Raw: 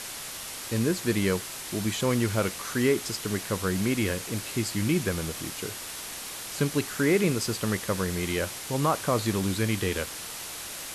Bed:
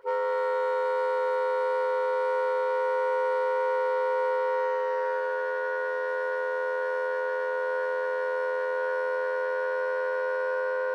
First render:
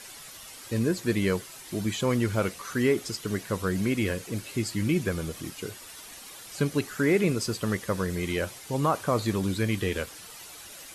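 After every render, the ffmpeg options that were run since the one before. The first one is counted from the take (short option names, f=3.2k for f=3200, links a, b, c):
-af "afftdn=nr=10:nf=-38"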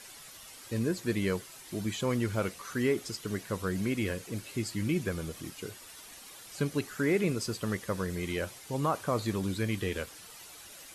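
-af "volume=-4.5dB"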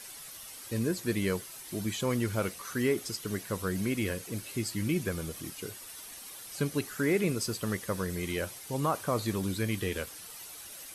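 -af "highshelf=f=8.8k:g=9.5,bandreject=f=7.1k:w=18"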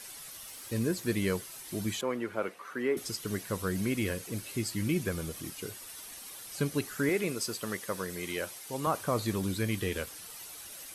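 -filter_complex "[0:a]asettb=1/sr,asplit=3[a][b][c];[a]atrim=end=0.464[d];[b]atrim=start=0.46:end=1.12,asetpts=PTS-STARTPTS,afade=t=in:d=0.004:c=qsin,afade=t=out:st=0.656:d=0.004:c=qsin,aeval=exprs='val(0)*gte(abs(val(0)),0.002)':c=same[e];[c]atrim=start=1.116[f];[d][e]acrossfade=d=0.004:c1=hsin:c2=qsin[g];[g][f]acrossfade=d=0.004:c1=qsin:c2=hsin,asettb=1/sr,asplit=3[h][i][j];[h]atrim=end=2.014[k];[i]atrim=start=2.01:end=2.97,asetpts=PTS-STARTPTS,afade=t=in:d=0.004:c=qsin,afade=t=out:st=0.956:d=0.004:c=qsin,acrossover=split=250 2600:gain=0.0891 1 0.141[l][m][n];[l][m][n]amix=inputs=3:normalize=0[o];[j]atrim=start=2.966[p];[k][o]acrossfade=d=0.004:c1=hsin:c2=qsin[q];[q][p]acrossfade=d=0.004:c1=qsin:c2=hsin,asettb=1/sr,asplit=3[r][s][t];[r]atrim=end=7.094[u];[s]atrim=start=7.09:end=8.87,asetpts=PTS-STARTPTS,afade=t=in:d=0.004:c=qsin,afade=t=out:st=1.776:d=0.004:c=qsin,highpass=f=320:p=1[v];[t]atrim=start=8.866[w];[u][v]acrossfade=d=0.004:c1=hsin:c2=qsin[x];[x][w]acrossfade=d=0.004:c1=qsin:c2=hsin"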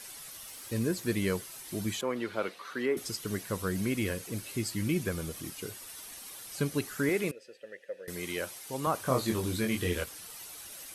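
-filter_complex "[0:a]asettb=1/sr,asplit=3[a][b][c];[a]atrim=end=2.164[d];[b]atrim=start=2.16:end=2.86,asetpts=PTS-STARTPTS,afade=t=in:d=0.004:c=qsin,afade=t=out:st=0.696:d=0.004:c=qsin,equalizer=f=4k:t=o:w=0.83:g=11.5[e];[c]atrim=start=2.856[f];[d][e]acrossfade=d=0.004:c1=hsin:c2=qsin[g];[g][f]acrossfade=d=0.004:c1=qsin:c2=hsin,asettb=1/sr,asplit=3[h][i][j];[h]atrim=end=7.314[k];[i]atrim=start=7.31:end=8.08,asetpts=PTS-STARTPTS,afade=t=in:d=0.004:c=qsin,afade=t=out:st=0.766:d=0.004:c=qsin,asplit=3[l][m][n];[l]bandpass=f=530:t=q:w=8,volume=0dB[o];[m]bandpass=f=1.84k:t=q:w=8,volume=-6dB[p];[n]bandpass=f=2.48k:t=q:w=8,volume=-9dB[q];[o][p][q]amix=inputs=3:normalize=0[r];[j]atrim=start=8.076[s];[k][r]acrossfade=d=0.004:c1=hsin:c2=qsin[t];[t][s]acrossfade=d=0.004:c1=qsin:c2=hsin,asettb=1/sr,asplit=3[u][v][w];[u]atrim=end=9.034[x];[v]atrim=start=9.03:end=10.04,asetpts=PTS-STARTPTS,afade=t=in:d=0.004:c=qsin,afade=t=out:st=1.006:d=0.004:c=qsin,asplit=2[y][z];[z]adelay=23,volume=-3dB[aa];[y][aa]amix=inputs=2:normalize=0,atrim=end_sample=44541[ab];[w]atrim=start=10.036[ac];[x][ab]acrossfade=d=0.004:c1=hsin:c2=qsin[ad];[ad][ac]acrossfade=d=0.004:c1=qsin:c2=hsin"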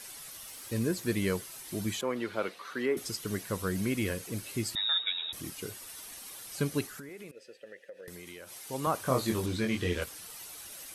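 -filter_complex "[0:a]asettb=1/sr,asplit=3[a][b][c];[a]atrim=end=4.754[d];[b]atrim=start=4.75:end=5.33,asetpts=PTS-STARTPTS,afade=t=in:d=0.004:c=qsin,afade=t=out:st=0.576:d=0.004:c=qsin,lowpass=f=3.3k:t=q:w=0.5098,lowpass=f=3.3k:t=q:w=0.6013,lowpass=f=3.3k:t=q:w=0.9,lowpass=f=3.3k:t=q:w=2.563,afreqshift=-3900[e];[c]atrim=start=5.326[f];[d][e]acrossfade=d=0.004:c1=hsin:c2=qsin[g];[g][f]acrossfade=d=0.004:c1=qsin:c2=hsin,asplit=3[h][i][j];[h]afade=t=out:st=6.86:d=0.02[k];[i]acompressor=threshold=-41dB:ratio=16:attack=3.2:release=140:knee=1:detection=peak,afade=t=in:st=6.86:d=0.02,afade=t=out:st=8.64:d=0.02[l];[j]afade=t=in:st=8.64:d=0.02[m];[k][l][m]amix=inputs=3:normalize=0,asettb=1/sr,asplit=3[n][o][p];[n]atrim=end=9.464[q];[o]atrim=start=9.46:end=10.02,asetpts=PTS-STARTPTS,afade=t=in:d=0.004:c=qsin,afade=t=out:st=0.556:d=0.004:c=qsin,acrossover=split=7300[r][s];[s]acompressor=threshold=-59dB:ratio=4:attack=1:release=60[t];[r][t]amix=inputs=2:normalize=0[u];[p]atrim=start=10.016[v];[q][u]acrossfade=d=0.004:c1=hsin:c2=qsin[w];[w][v]acrossfade=d=0.004:c1=qsin:c2=hsin"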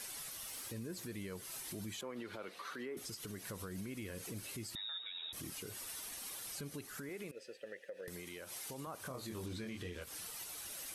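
-af "acompressor=threshold=-35dB:ratio=6,alimiter=level_in=12dB:limit=-24dB:level=0:latency=1:release=104,volume=-12dB"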